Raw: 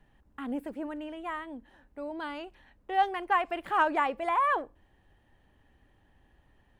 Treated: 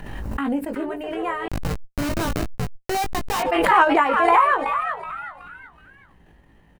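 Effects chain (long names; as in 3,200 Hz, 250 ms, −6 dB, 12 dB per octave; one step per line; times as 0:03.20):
echo with shifted repeats 374 ms, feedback 36%, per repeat +130 Hz, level −7 dB
transient designer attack +3 dB, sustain −8 dB
0:01.46–0:03.41: comparator with hysteresis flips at −34 dBFS
notch filter 3,400 Hz, Q 12
double-tracking delay 18 ms −5 dB
background raised ahead of every attack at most 26 dB per second
level +6.5 dB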